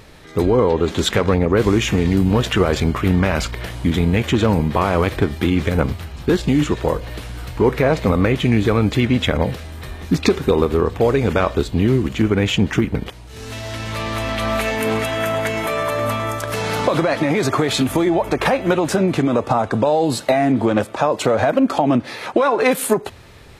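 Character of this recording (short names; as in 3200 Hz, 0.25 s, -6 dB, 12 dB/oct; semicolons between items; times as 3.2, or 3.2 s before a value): noise floor -38 dBFS; spectral tilt -5.5 dB/oct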